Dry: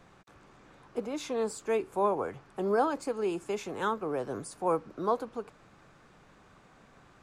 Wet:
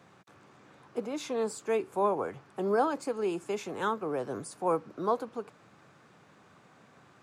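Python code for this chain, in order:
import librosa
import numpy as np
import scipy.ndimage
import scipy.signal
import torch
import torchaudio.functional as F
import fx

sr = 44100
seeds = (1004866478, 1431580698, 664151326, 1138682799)

y = scipy.signal.sosfilt(scipy.signal.butter(4, 95.0, 'highpass', fs=sr, output='sos'), x)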